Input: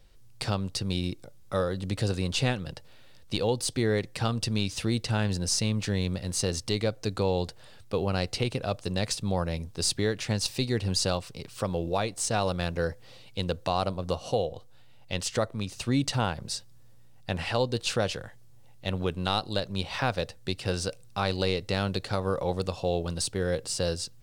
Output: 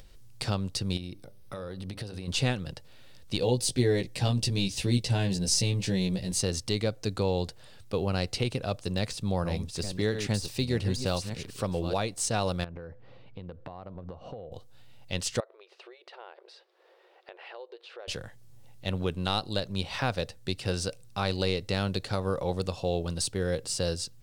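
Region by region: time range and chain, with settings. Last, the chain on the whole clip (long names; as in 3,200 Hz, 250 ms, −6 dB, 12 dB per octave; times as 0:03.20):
0:00.97–0:02.28: downward compressor 5 to 1, threshold −33 dBFS + parametric band 7,200 Hz −13.5 dB 0.23 octaves + hum removal 99.42 Hz, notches 13
0:03.40–0:06.39: parametric band 1,300 Hz −10.5 dB 0.56 octaves + double-tracking delay 16 ms −2.5 dB
0:08.75–0:11.94: delay that plays each chunk backwards 689 ms, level −8 dB + de-essing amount 70%
0:12.64–0:14.52: low-pass filter 1,600 Hz + downward compressor 10 to 1, threshold −36 dBFS
0:15.40–0:18.08: downward compressor 5 to 1, threshold −36 dBFS + linear-phase brick-wall high-pass 340 Hz + high-frequency loss of the air 380 metres
whole clip: upward compression, threshold −44 dBFS; parametric band 1,000 Hz −2.5 dB 2.4 octaves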